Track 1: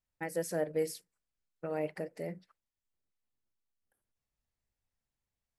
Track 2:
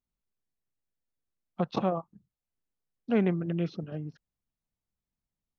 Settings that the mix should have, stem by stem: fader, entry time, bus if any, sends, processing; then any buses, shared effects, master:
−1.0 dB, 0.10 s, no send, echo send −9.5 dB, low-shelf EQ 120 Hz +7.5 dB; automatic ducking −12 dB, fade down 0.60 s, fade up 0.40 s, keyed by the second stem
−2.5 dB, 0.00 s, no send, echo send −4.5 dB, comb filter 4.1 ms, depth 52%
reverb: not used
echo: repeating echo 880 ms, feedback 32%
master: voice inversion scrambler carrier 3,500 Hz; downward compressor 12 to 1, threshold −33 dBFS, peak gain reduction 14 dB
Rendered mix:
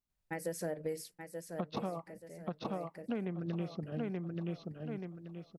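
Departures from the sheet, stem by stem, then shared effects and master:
stem 2: missing comb filter 4.1 ms, depth 52%
master: missing voice inversion scrambler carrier 3,500 Hz

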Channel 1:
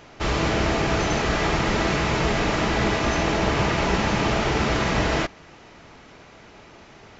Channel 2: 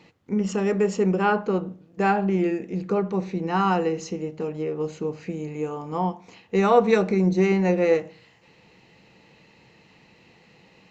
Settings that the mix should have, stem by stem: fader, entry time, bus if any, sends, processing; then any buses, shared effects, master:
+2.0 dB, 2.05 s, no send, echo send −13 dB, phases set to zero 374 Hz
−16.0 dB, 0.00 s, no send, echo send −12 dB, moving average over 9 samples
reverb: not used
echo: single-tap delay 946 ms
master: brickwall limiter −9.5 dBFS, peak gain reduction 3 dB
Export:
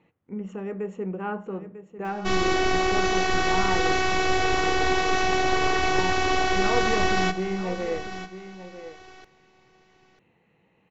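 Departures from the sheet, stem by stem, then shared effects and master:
stem 2 −16.0 dB → −9.5 dB
master: missing brickwall limiter −9.5 dBFS, peak gain reduction 3 dB

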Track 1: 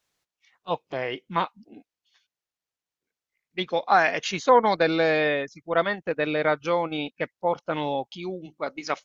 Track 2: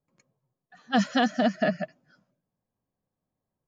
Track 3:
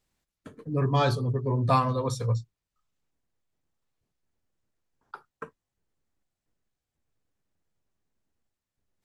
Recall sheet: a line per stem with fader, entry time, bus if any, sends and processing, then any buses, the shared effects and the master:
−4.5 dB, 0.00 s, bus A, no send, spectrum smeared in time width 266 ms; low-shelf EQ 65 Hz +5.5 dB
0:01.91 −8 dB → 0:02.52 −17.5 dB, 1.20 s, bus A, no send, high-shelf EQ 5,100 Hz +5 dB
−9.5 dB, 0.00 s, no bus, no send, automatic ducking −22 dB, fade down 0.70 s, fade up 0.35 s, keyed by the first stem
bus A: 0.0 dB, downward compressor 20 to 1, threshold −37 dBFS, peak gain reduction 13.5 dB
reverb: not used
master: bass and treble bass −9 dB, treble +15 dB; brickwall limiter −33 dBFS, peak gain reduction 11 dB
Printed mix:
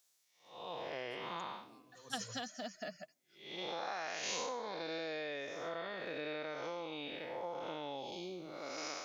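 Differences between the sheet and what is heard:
stem 3 −9.5 dB → −20.5 dB
master: missing brickwall limiter −33 dBFS, peak gain reduction 11 dB

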